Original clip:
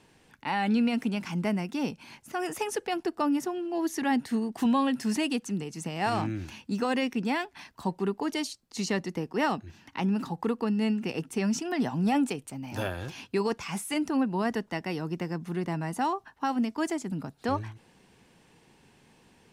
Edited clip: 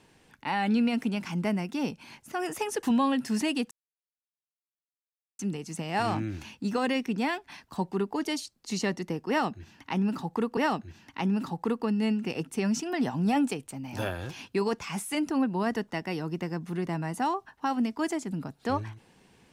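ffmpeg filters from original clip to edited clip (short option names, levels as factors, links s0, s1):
-filter_complex "[0:a]asplit=4[s0][s1][s2][s3];[s0]atrim=end=2.832[s4];[s1]atrim=start=4.578:end=5.46,asetpts=PTS-STARTPTS,afade=t=out:st=0.878:d=0.004:c=hsin,apad=pad_dur=1.68[s5];[s2]atrim=start=5.46:end=10.642,asetpts=PTS-STARTPTS,afade=t=in:d=0.004:c=hsin[s6];[s3]atrim=start=9.358[s7];[s5][s6]concat=n=2:v=0:a=1[s8];[s4][s8]acrossfade=d=0.004:c1=hsin:c2=hsin[s9];[s9][s7]acrossfade=d=0.004:c1=hsin:c2=hsin"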